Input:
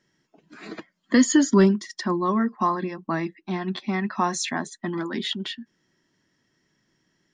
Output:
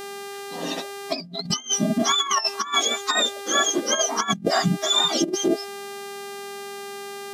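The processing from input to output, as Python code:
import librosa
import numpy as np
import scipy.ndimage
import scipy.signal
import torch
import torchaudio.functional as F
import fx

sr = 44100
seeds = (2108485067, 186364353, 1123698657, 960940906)

y = fx.octave_mirror(x, sr, pivot_hz=1100.0)
y = fx.hpss(y, sr, part='harmonic', gain_db=7)
y = fx.dmg_buzz(y, sr, base_hz=400.0, harmonics=36, level_db=-43.0, tilt_db=-5, odd_only=False)
y = fx.over_compress(y, sr, threshold_db=-25.0, ratio=-0.5)
y = F.gain(torch.from_numpy(y), 3.0).numpy()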